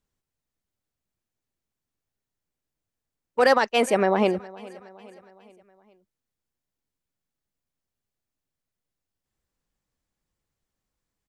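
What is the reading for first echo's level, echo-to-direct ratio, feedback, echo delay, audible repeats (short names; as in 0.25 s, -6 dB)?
-21.0 dB, -19.5 dB, 52%, 0.415 s, 3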